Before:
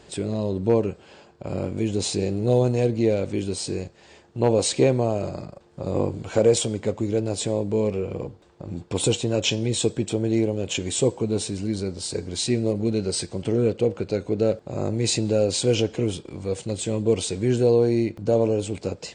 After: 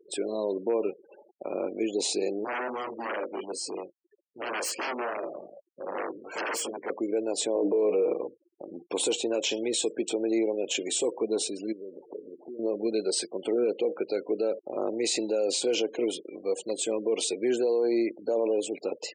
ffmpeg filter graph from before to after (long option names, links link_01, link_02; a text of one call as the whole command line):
ffmpeg -i in.wav -filter_complex "[0:a]asettb=1/sr,asplit=3[link_01][link_02][link_03];[link_01]atrim=end=2.444[link_04];[link_02]atrim=start=2.44:end=6.9,asetpts=PTS-STARTPTS,afade=type=in:duration=0.004:curve=qsin,afade=type=out:start_time=4.456:duration=0.004:curve=qsin,flanger=delay=17.5:depth=4:speed=2.5,aeval=exprs='0.0531*(abs(mod(val(0)/0.0531+3,4)-2)-1)':channel_layout=same,asuperstop=centerf=3700:order=4:qfactor=4.2[link_05];[link_03]atrim=start=6.896[link_06];[link_04][link_05]acrossfade=duration=0.004:curve1=hsin:curve2=qsin[link_07];[link_07][link_06]acrossfade=duration=0.004:curve1=qsin:curve2=hsin,asettb=1/sr,asplit=3[link_08][link_09][link_10];[link_08]atrim=end=7.554[link_11];[link_09]atrim=start=7.55:end=8.14,asetpts=PTS-STARTPTS,afade=type=in:duration=0.004:curve=qsin,afade=type=out:start_time=0.586:duration=0.004:curve=qsin,equalizer=frequency=420:width_type=o:width=2.7:gain=10.5,aecho=1:1:6.5:0.5,atrim=end_sample=26019[link_12];[link_10]atrim=start=8.136[link_13];[link_11][link_12]acrossfade=duration=0.004:curve1=hsin:curve2=qsin[link_14];[link_14][link_13]acrossfade=duration=0.004:curve1=qsin:curve2=hsin,asettb=1/sr,asplit=3[link_15][link_16][link_17];[link_15]atrim=end=11.724[link_18];[link_16]atrim=start=11.72:end=12.59,asetpts=PTS-STARTPTS,afade=type=in:duration=0.004:curve=qsin,afade=type=out:start_time=0.866:duration=0.004:curve=qsin,lowpass=frequency=1500:width=0.5412,lowpass=frequency=1500:width=1.3066,equalizer=frequency=590:width_type=o:width=2.4:gain=3.5,acompressor=threshold=-33dB:ratio=8:attack=3.2:release=140:knee=1:detection=peak[link_19];[link_17]atrim=start=12.586[link_20];[link_18][link_19]acrossfade=duration=0.004:curve1=hsin:curve2=qsin[link_21];[link_21][link_20]acrossfade=duration=0.004:curve1=qsin:curve2=hsin,afftfilt=real='re*gte(hypot(re,im),0.0126)':imag='im*gte(hypot(re,im),0.0126)':win_size=1024:overlap=0.75,highpass=frequency=310:width=0.5412,highpass=frequency=310:width=1.3066,alimiter=limit=-18.5dB:level=0:latency=1:release=42" out.wav